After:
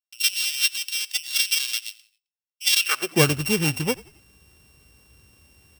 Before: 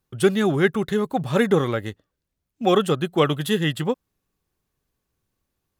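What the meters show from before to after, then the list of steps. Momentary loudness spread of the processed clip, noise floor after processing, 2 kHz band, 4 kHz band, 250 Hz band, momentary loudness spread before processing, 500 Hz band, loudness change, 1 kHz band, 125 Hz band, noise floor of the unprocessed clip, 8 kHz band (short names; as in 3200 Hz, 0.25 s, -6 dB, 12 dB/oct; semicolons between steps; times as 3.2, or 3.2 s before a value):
8 LU, under -85 dBFS, +3.0 dB, +8.5 dB, -8.0 dB, 8 LU, -9.5 dB, 0.0 dB, -8.0 dB, -3.5 dB, -80 dBFS, +15.0 dB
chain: sample sorter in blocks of 16 samples; high shelf 2400 Hz +7.5 dB; reverse; upward compressor, threshold -35 dBFS; reverse; gate with hold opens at -50 dBFS; high-pass sweep 3700 Hz -> 64 Hz, 2.78–3.32; on a send: frequency-shifting echo 88 ms, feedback 40%, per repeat -49 Hz, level -21.5 dB; on the sum: gain -2.5 dB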